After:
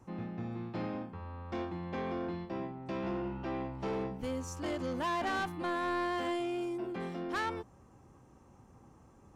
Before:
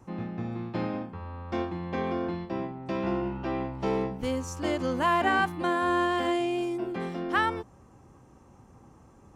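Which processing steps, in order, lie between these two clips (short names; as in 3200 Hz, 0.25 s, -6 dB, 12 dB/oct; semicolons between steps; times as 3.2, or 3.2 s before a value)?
soft clip -25 dBFS, distortion -12 dB; gain -4.5 dB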